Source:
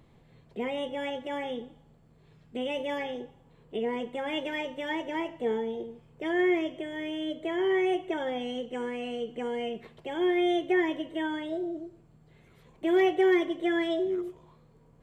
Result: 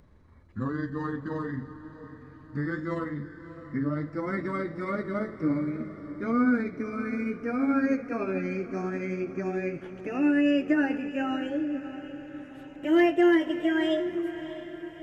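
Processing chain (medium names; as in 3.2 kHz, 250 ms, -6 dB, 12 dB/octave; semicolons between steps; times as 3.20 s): pitch bend over the whole clip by -11.5 st ending unshifted; echo that smears into a reverb 628 ms, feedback 55%, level -13 dB; trim +3 dB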